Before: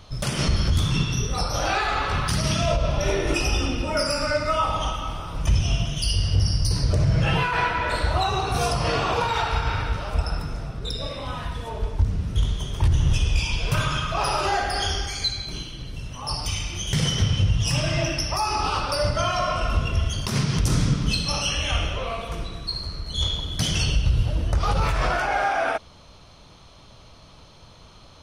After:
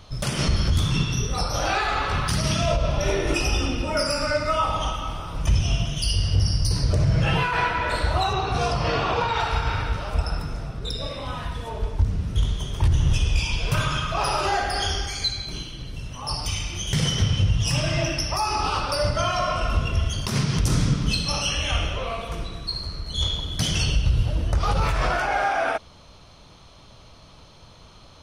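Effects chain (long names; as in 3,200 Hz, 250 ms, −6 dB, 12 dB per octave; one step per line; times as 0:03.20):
0:08.33–0:09.40: low-pass filter 5,100 Hz 12 dB per octave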